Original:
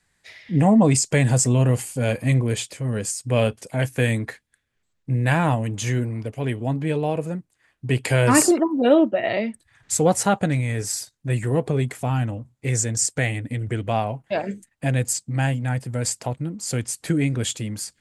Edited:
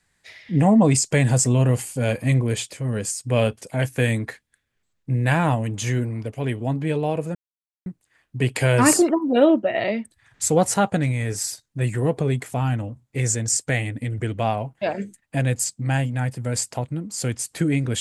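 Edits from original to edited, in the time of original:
7.35 s: insert silence 0.51 s

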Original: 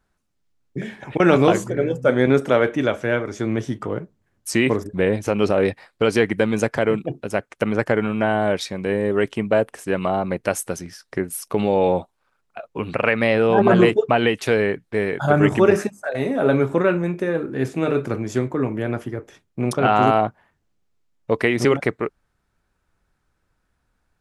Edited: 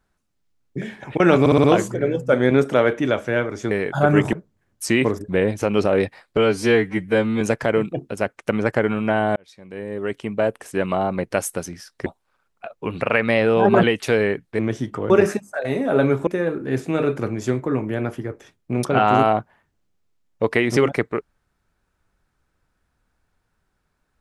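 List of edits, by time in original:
1.40 s: stutter 0.06 s, 5 plays
3.47–3.98 s: swap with 14.98–15.60 s
6.02–6.54 s: stretch 2×
8.49–9.92 s: fade in
11.19–11.99 s: delete
13.76–14.22 s: delete
16.77–17.15 s: delete

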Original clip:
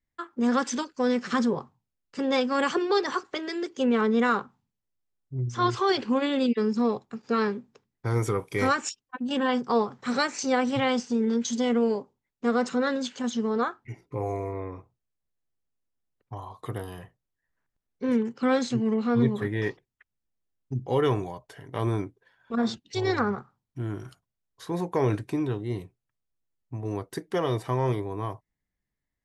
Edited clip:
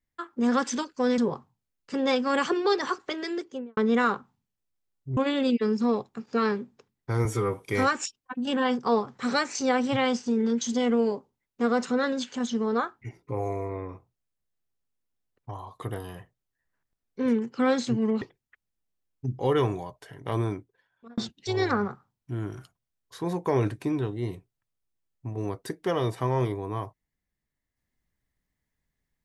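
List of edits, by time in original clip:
1.18–1.43 s: delete
3.55–4.02 s: studio fade out
5.42–6.13 s: delete
8.21–8.46 s: stretch 1.5×
19.05–19.69 s: delete
21.83–22.65 s: fade out

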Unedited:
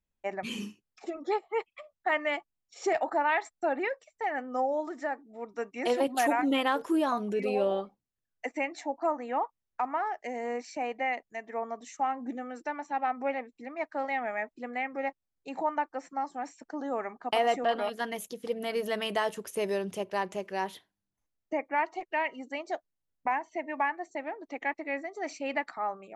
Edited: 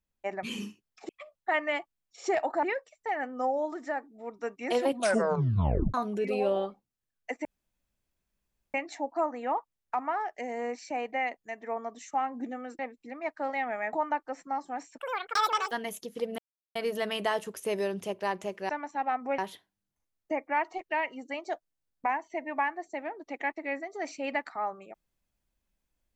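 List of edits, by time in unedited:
1.09–1.67 s: delete
3.21–3.78 s: delete
6.08 s: tape stop 1.01 s
8.60 s: insert room tone 1.29 s
12.65–13.34 s: move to 20.60 s
14.48–15.59 s: delete
16.64–17.99 s: speed 184%
18.66 s: insert silence 0.37 s

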